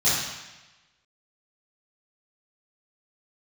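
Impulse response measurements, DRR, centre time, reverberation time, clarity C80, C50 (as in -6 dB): -12.5 dB, 82 ms, 1.1 s, 2.5 dB, -0.5 dB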